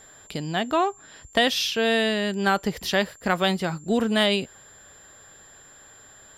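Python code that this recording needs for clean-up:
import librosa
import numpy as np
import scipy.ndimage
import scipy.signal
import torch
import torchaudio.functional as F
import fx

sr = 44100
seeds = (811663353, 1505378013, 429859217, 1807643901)

y = fx.notch(x, sr, hz=7300.0, q=30.0)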